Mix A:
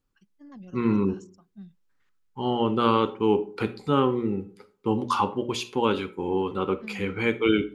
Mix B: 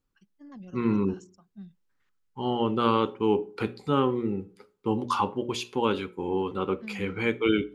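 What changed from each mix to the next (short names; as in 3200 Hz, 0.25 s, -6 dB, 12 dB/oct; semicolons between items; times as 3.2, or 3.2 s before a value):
second voice: send -7.5 dB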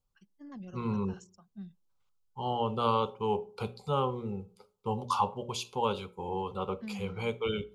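second voice: add fixed phaser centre 740 Hz, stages 4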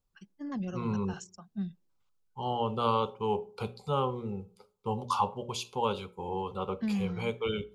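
first voice +9.5 dB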